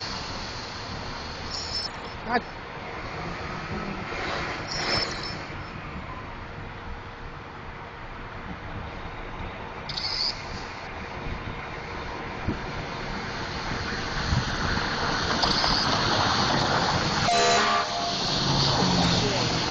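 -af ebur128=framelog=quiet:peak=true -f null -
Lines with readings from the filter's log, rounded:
Integrated loudness:
  I:         -26.9 LUFS
  Threshold: -37.3 LUFS
Loudness range:
  LRA:        15.0 LU
  Threshold: -47.8 LUFS
  LRA low:   -37.4 LUFS
  LRA high:  -22.4 LUFS
True peak:
  Peak:       -5.9 dBFS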